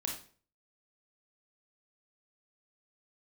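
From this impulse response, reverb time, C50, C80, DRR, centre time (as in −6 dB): 0.45 s, 5.0 dB, 10.5 dB, −0.5 dB, 29 ms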